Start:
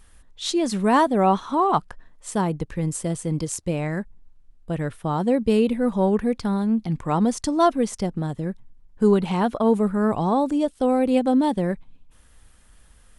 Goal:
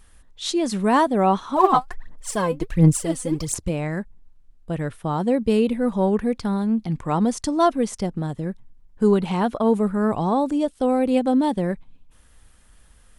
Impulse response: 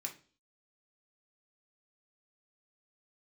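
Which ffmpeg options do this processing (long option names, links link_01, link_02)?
-filter_complex "[0:a]asplit=3[link_01][link_02][link_03];[link_01]afade=type=out:start_time=1.55:duration=0.02[link_04];[link_02]aphaser=in_gain=1:out_gain=1:delay=4:decay=0.75:speed=1.4:type=sinusoidal,afade=type=in:start_time=1.55:duration=0.02,afade=type=out:start_time=3.68:duration=0.02[link_05];[link_03]afade=type=in:start_time=3.68:duration=0.02[link_06];[link_04][link_05][link_06]amix=inputs=3:normalize=0"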